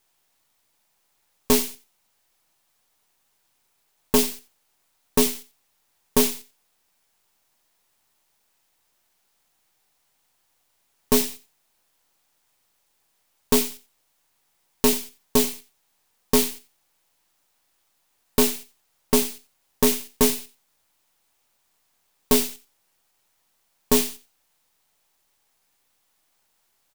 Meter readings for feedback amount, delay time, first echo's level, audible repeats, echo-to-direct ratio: 18%, 89 ms, -18.0 dB, 2, -18.0 dB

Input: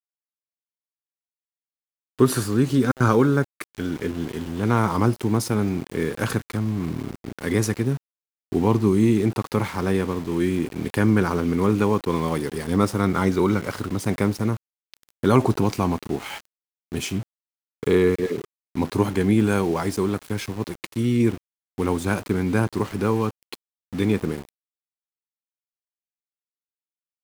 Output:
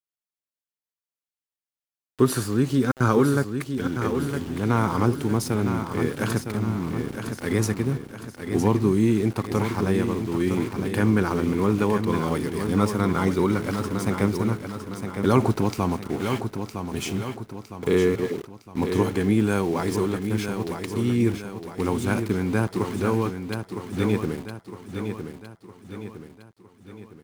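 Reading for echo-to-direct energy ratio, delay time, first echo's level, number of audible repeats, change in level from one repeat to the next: -6.5 dB, 0.96 s, -7.5 dB, 5, -6.5 dB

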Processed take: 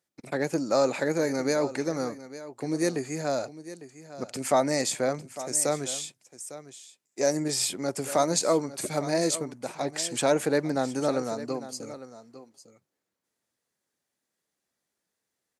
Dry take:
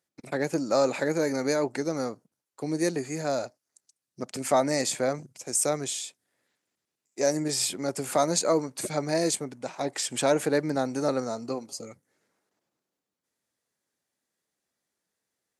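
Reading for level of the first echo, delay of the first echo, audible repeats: -15.0 dB, 0.853 s, 1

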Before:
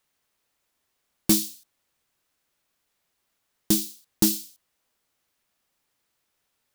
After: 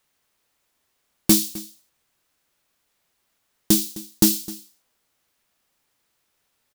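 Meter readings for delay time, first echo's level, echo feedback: 0.259 s, -18.5 dB, no steady repeat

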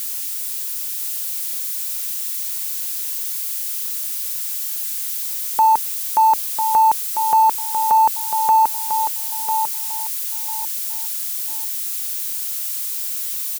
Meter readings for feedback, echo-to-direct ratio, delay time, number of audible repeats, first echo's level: 24%, -6.5 dB, 0.997 s, 3, -7.0 dB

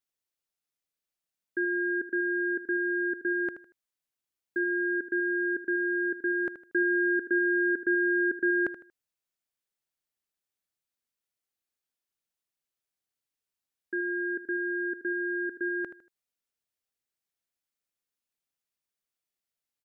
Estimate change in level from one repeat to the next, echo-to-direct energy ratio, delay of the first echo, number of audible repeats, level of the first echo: -11.0 dB, -12.0 dB, 78 ms, 3, -12.5 dB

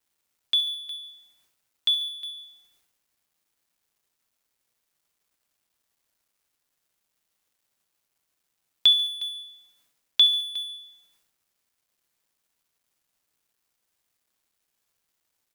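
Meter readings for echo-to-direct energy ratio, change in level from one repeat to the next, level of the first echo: -16.0 dB, -5.5 dB, -17.5 dB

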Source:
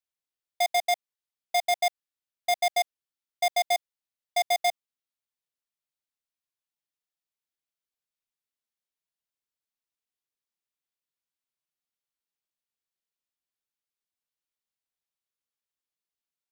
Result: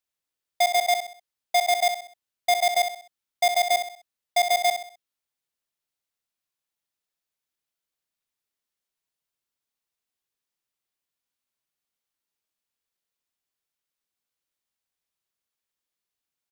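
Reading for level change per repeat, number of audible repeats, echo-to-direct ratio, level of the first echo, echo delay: -8.5 dB, 4, -7.5 dB, -8.0 dB, 64 ms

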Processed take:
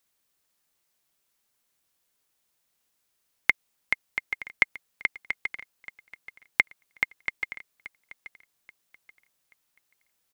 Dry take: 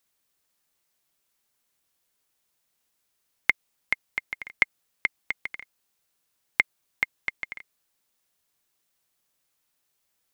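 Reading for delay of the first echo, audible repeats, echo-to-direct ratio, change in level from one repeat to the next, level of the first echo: 0.831 s, 2, -16.5 dB, -10.0 dB, -17.0 dB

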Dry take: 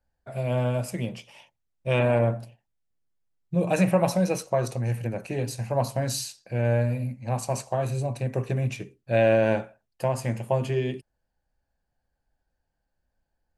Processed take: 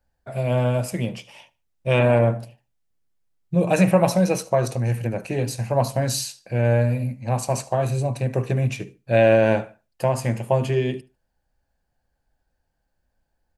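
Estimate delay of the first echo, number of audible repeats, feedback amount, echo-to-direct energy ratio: 74 ms, 2, 26%, -22.0 dB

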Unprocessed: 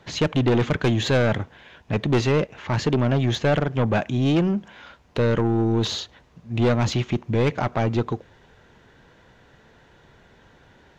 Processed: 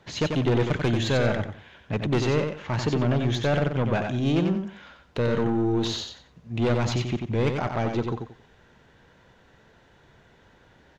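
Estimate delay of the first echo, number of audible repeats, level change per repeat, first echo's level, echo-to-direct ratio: 91 ms, 3, -12.5 dB, -5.5 dB, -5.0 dB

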